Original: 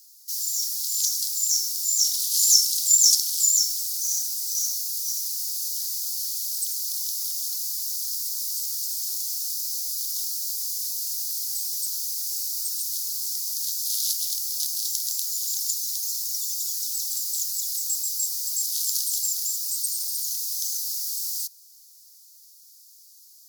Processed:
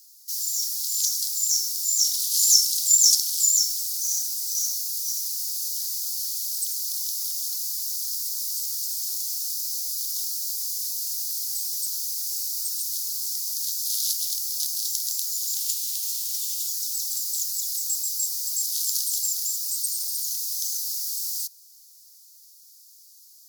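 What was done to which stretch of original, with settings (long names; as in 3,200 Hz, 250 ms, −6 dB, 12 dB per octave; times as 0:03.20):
0:01.13–0:02.09: notch filter 2,600 Hz, Q 10
0:15.55–0:16.66: spectral envelope flattened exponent 0.6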